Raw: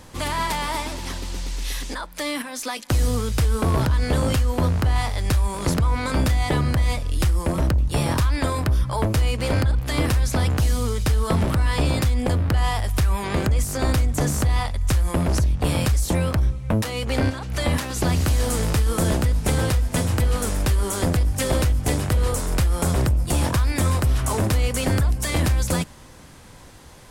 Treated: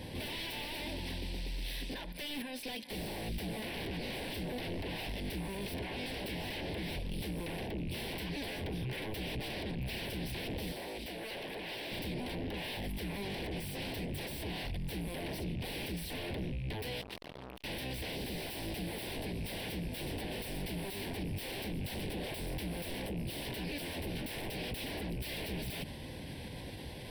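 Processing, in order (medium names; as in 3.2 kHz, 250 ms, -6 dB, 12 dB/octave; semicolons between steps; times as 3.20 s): rattle on loud lows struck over -31 dBFS, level -34 dBFS; high-pass 78 Hz 6 dB/octave; wavefolder -28 dBFS; 10.72–11.92 s: tone controls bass -13 dB, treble -3 dB; overload inside the chain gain 29.5 dB; peak limiter -40 dBFS, peak gain reduction 10.5 dB; treble shelf 10 kHz -7 dB; static phaser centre 3 kHz, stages 4; 17.01–17.64 s: transformer saturation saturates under 1 kHz; trim +7 dB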